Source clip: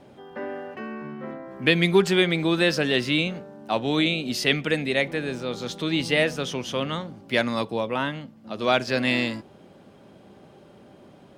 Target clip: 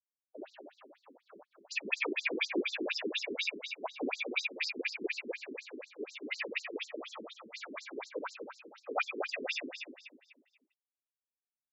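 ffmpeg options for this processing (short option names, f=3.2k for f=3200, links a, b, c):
-filter_complex "[0:a]afftfilt=real='re*gte(hypot(re,im),0.0794)':imag='im*gte(hypot(re,im),0.0794)':win_size=1024:overlap=0.75,equalizer=f=2.4k:w=6.7:g=14.5,acrossover=split=270|2100[a][b][c];[a]adelay=70[d];[c]adelay=150[e];[d][b][e]amix=inputs=3:normalize=0,aresample=16000,acrusher=bits=5:mix=0:aa=0.5,aresample=44100,atempo=0.97,aeval=exprs='0.75*(cos(1*acos(clip(val(0)/0.75,-1,1)))-cos(1*PI/2))+0.0473*(cos(8*acos(clip(val(0)/0.75,-1,1)))-cos(8*PI/2))':c=same,afftfilt=real='hypot(re,im)*cos(2*PI*random(0))':imag='hypot(re,im)*sin(2*PI*random(1))':win_size=512:overlap=0.75,asplit=2[f][g];[g]aecho=0:1:253|506|759|1012:0.447|0.147|0.0486|0.0161[h];[f][h]amix=inputs=2:normalize=0,afftfilt=real='re*between(b*sr/1024,300*pow(5600/300,0.5+0.5*sin(2*PI*4.1*pts/sr))/1.41,300*pow(5600/300,0.5+0.5*sin(2*PI*4.1*pts/sr))*1.41)':imag='im*between(b*sr/1024,300*pow(5600/300,0.5+0.5*sin(2*PI*4.1*pts/sr))/1.41,300*pow(5600/300,0.5+0.5*sin(2*PI*4.1*pts/sr))*1.41)':win_size=1024:overlap=0.75"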